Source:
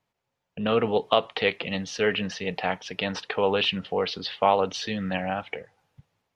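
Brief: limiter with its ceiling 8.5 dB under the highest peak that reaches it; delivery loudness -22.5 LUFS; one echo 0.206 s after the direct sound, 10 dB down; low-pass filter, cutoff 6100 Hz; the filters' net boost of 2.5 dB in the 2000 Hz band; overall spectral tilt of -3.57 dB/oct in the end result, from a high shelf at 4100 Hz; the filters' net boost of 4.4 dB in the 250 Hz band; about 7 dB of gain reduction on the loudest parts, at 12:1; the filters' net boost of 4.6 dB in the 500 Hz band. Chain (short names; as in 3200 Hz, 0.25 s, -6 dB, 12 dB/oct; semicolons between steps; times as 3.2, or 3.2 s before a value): LPF 6100 Hz; bell 250 Hz +5 dB; bell 500 Hz +4 dB; bell 2000 Hz +4 dB; high shelf 4100 Hz -4 dB; compressor 12:1, threshold -20 dBFS; limiter -17 dBFS; echo 0.206 s -10 dB; gain +6.5 dB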